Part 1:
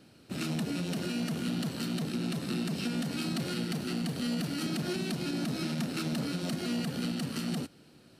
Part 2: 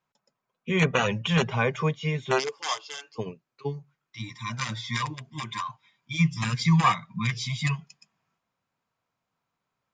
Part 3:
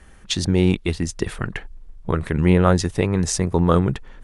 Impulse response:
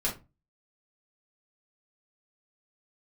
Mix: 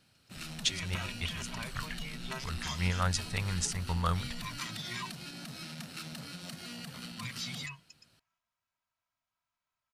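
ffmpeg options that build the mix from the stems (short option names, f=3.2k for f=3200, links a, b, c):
-filter_complex "[0:a]volume=-4dB[a];[1:a]acompressor=threshold=-28dB:ratio=6,aecho=1:1:3.1:0.52,volume=-6dB,asplit=3[b][c][d];[b]atrim=end=5.11,asetpts=PTS-STARTPTS,afade=t=out:st=5.106:d=0.004:c=hsin[e];[c]atrim=start=5.11:end=6.94,asetpts=PTS-STARTPTS,volume=0[f];[d]atrim=start=6.94,asetpts=PTS-STARTPTS,afade=t=in:d=0.004:c=hsin[g];[e][f][g]concat=n=3:v=0:a=1,asplit=2[h][i];[2:a]equalizer=f=320:t=o:w=2.3:g=-9,adelay=350,volume=-4.5dB[j];[i]apad=whole_len=202355[k];[j][k]sidechaincompress=threshold=-45dB:ratio=8:attack=43:release=143[l];[a][h][l]amix=inputs=3:normalize=0,equalizer=f=330:t=o:w=1.9:g=-15"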